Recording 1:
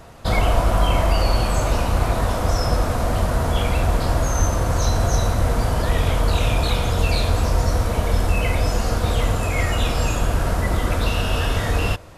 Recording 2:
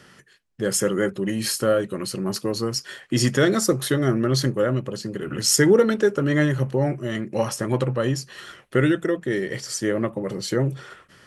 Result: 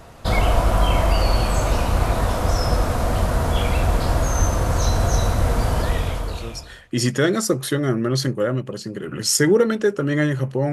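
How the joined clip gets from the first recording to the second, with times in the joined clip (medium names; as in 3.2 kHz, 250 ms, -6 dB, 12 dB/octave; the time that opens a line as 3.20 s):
recording 1
6.41 s: go over to recording 2 from 2.60 s, crossfade 1.22 s quadratic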